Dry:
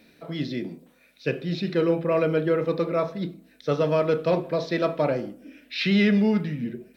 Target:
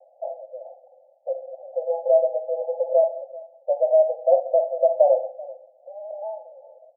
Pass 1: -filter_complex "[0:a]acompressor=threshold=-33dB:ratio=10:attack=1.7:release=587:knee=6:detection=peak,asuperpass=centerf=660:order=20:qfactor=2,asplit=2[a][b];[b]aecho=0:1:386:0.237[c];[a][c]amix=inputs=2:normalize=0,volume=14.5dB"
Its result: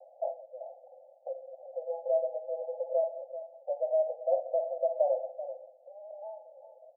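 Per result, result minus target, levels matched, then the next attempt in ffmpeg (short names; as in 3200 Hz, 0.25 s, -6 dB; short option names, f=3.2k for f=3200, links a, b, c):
compressor: peak gain reduction +11 dB; echo-to-direct +8 dB
-filter_complex "[0:a]acompressor=threshold=-21dB:ratio=10:attack=1.7:release=587:knee=6:detection=peak,asuperpass=centerf=660:order=20:qfactor=2,asplit=2[a][b];[b]aecho=0:1:386:0.237[c];[a][c]amix=inputs=2:normalize=0,volume=14.5dB"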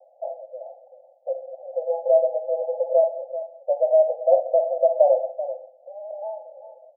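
echo-to-direct +8 dB
-filter_complex "[0:a]acompressor=threshold=-21dB:ratio=10:attack=1.7:release=587:knee=6:detection=peak,asuperpass=centerf=660:order=20:qfactor=2,asplit=2[a][b];[b]aecho=0:1:386:0.0944[c];[a][c]amix=inputs=2:normalize=0,volume=14.5dB"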